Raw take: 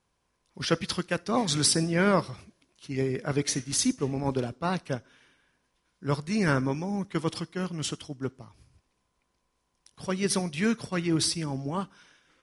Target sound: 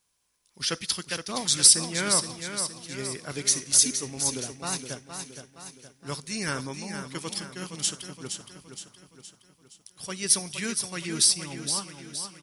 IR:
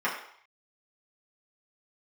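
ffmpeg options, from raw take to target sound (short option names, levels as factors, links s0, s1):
-af "aecho=1:1:468|936|1404|1872|2340|2808:0.398|0.199|0.0995|0.0498|0.0249|0.0124,crystalizer=i=7:c=0,volume=0.355"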